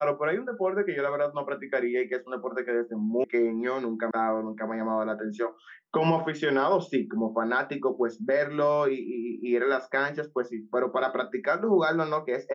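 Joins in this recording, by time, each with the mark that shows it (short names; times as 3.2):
3.24 sound cut off
4.11 sound cut off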